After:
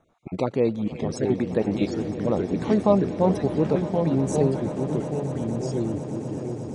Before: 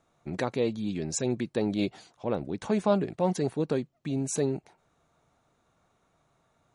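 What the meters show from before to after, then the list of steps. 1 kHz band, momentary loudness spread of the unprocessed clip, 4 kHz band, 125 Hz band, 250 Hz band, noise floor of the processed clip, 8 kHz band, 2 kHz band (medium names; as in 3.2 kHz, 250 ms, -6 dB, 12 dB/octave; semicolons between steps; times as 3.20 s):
+5.5 dB, 7 LU, -0.5 dB, +8.5 dB, +7.0 dB, -43 dBFS, -4.5 dB, +1.0 dB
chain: random holes in the spectrogram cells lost 28%; treble shelf 2.3 kHz -10.5 dB; ever faster or slower copies 532 ms, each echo -3 st, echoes 3, each echo -6 dB; echo with a slow build-up 120 ms, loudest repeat 8, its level -18 dB; trim +6 dB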